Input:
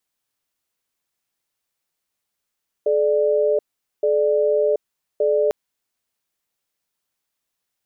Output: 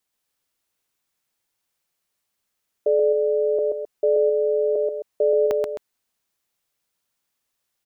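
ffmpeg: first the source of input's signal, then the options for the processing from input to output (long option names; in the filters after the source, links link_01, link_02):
-f lavfi -i "aevalsrc='0.126*(sin(2*PI*429*t)+sin(2*PI*592*t))*clip(min(mod(t,1.17),0.73-mod(t,1.17))/0.005,0,1)':duration=2.65:sample_rate=44100"
-af "aecho=1:1:131.2|262.4:0.708|0.282"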